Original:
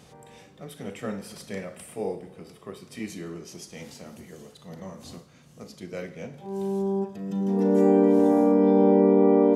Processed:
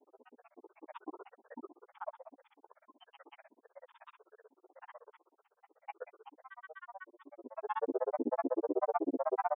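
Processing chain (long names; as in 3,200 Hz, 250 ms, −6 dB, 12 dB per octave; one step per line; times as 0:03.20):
linear-phase brick-wall band-pass 450–1,900 Hz
granular cloud 49 ms, grains 16 per second, pitch spread up and down by 12 semitones
level −4 dB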